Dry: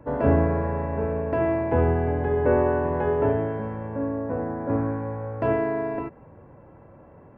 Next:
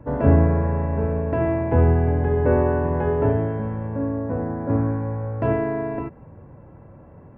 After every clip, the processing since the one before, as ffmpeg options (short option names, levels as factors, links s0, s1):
-af "bass=f=250:g=7,treble=f=4000:g=-4"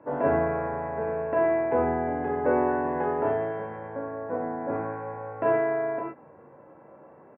-filter_complex "[0:a]highpass=380,lowpass=2400,asplit=2[s0][s1];[s1]aecho=0:1:20|35|48:0.501|0.631|0.473[s2];[s0][s2]amix=inputs=2:normalize=0,volume=0.841"